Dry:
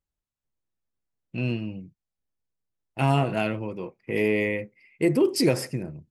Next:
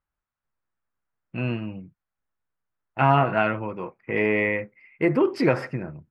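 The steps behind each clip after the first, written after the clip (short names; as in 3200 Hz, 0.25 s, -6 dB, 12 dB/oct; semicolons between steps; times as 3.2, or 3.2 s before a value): EQ curve 420 Hz 0 dB, 1400 Hz +12 dB, 9400 Hz -23 dB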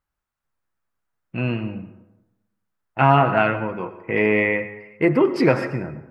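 plate-style reverb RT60 0.97 s, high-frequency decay 0.55×, pre-delay 90 ms, DRR 12.5 dB; gain +3.5 dB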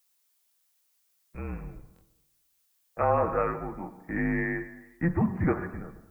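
mistuned SSB -170 Hz 220–2100 Hz; added noise blue -63 dBFS; stuck buffer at 1.94, samples 1024, times 2; gain -8 dB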